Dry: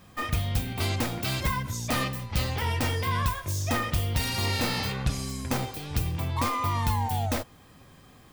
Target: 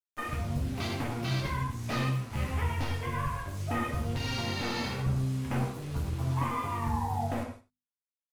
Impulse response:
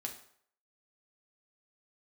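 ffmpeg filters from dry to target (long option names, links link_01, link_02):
-filter_complex "[0:a]afwtdn=0.0141,flanger=delay=6.6:depth=6.2:regen=-14:speed=0.94:shape=triangular,asplit=3[link_01][link_02][link_03];[link_01]afade=type=out:start_time=2.53:duration=0.02[link_04];[link_02]asubboost=boost=3.5:cutoff=100,afade=type=in:start_time=2.53:duration=0.02,afade=type=out:start_time=3.29:duration=0.02[link_05];[link_03]afade=type=in:start_time=3.29:duration=0.02[link_06];[link_04][link_05][link_06]amix=inputs=3:normalize=0,alimiter=limit=-22.5dB:level=0:latency=1:release=141,acrusher=bits=7:mix=0:aa=0.000001,bandreject=frequency=50:width_type=h:width=6,bandreject=frequency=100:width_type=h:width=6,bandreject=frequency=150:width_type=h:width=6,bandreject=frequency=200:width_type=h:width=6,bandreject=frequency=250:width_type=h:width=6,aecho=1:1:95:0.119[link_07];[1:a]atrim=start_sample=2205,atrim=end_sample=4410,asetrate=25137,aresample=44100[link_08];[link_07][link_08]afir=irnorm=-1:irlink=0,adynamicequalizer=threshold=0.00631:dfrequency=1700:dqfactor=0.7:tfrequency=1700:tqfactor=0.7:attack=5:release=100:ratio=0.375:range=1.5:mode=cutabove:tftype=highshelf"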